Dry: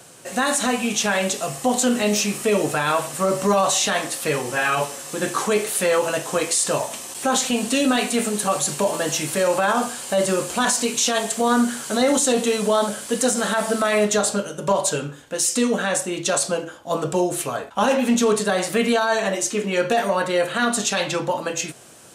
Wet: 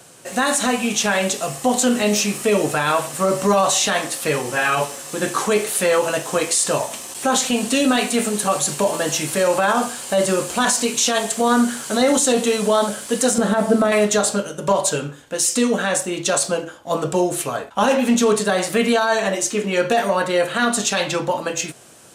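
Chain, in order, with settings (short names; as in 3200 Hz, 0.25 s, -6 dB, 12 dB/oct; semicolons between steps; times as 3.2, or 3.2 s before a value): 13.38–13.92 tilt shelf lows +8 dB, about 820 Hz; in parallel at -11 dB: crossover distortion -37.5 dBFS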